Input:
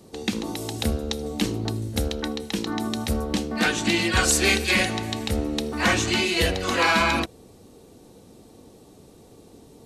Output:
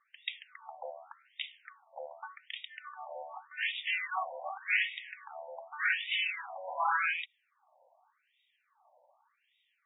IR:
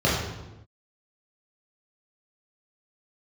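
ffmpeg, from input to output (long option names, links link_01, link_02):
-af "afftfilt=real='re*between(b*sr/1024,720*pow(2700/720,0.5+0.5*sin(2*PI*0.86*pts/sr))/1.41,720*pow(2700/720,0.5+0.5*sin(2*PI*0.86*pts/sr))*1.41)':imag='im*between(b*sr/1024,720*pow(2700/720,0.5+0.5*sin(2*PI*0.86*pts/sr))/1.41,720*pow(2700/720,0.5+0.5*sin(2*PI*0.86*pts/sr))*1.41)':win_size=1024:overlap=0.75,volume=-5dB"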